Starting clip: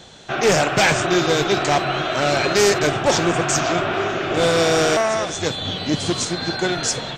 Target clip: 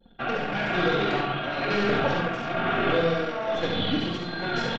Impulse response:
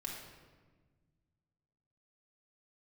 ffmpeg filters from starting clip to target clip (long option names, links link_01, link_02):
-filter_complex "[0:a]aecho=1:1:4.3:0.44,acompressor=threshold=-18dB:ratio=16[link_01];[1:a]atrim=start_sample=2205,afade=type=out:start_time=0.3:duration=0.01,atrim=end_sample=13671[link_02];[link_01][link_02]afir=irnorm=-1:irlink=0,tremolo=f=0.7:d=0.55,lowpass=frequency=3700:width=0.5412,lowpass=frequency=3700:width=1.3066,anlmdn=0.398,aecho=1:1:102|204|306|408:0.631|0.164|0.0427|0.0111,atempo=1.5"